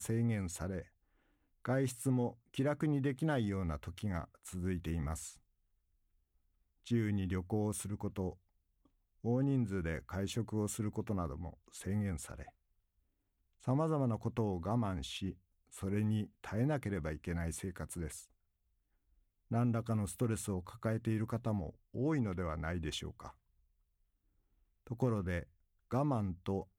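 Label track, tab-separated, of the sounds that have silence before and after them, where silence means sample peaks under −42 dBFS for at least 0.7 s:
1.650000	5.290000	sound
6.870000	8.300000	sound
9.240000	12.430000	sound
13.670000	18.200000	sound
19.510000	23.280000	sound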